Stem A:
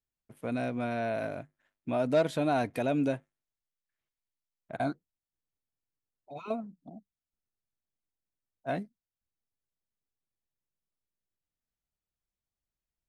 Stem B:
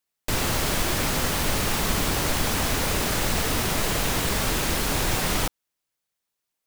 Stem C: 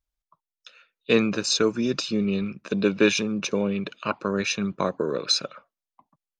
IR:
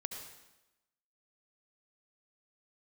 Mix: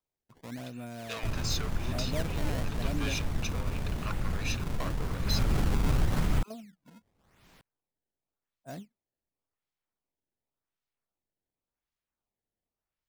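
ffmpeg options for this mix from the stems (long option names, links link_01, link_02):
-filter_complex "[0:a]bass=frequency=250:gain=8,treble=frequency=4000:gain=13,volume=-12dB[link_01];[1:a]bass=frequency=250:gain=14,treble=frequency=4000:gain=-12,acompressor=mode=upward:threshold=-27dB:ratio=2.5,adelay=950,volume=-4.5dB,afade=type=in:start_time=5.21:duration=0.47:silence=0.251189[link_02];[2:a]asoftclip=type=tanh:threshold=-23dB,highpass=840,volume=-6dB[link_03];[link_01][link_02]amix=inputs=2:normalize=0,acrusher=samples=21:mix=1:aa=0.000001:lfo=1:lforange=33.6:lforate=0.9,alimiter=limit=-18dB:level=0:latency=1:release=112,volume=0dB[link_04];[link_03][link_04]amix=inputs=2:normalize=0"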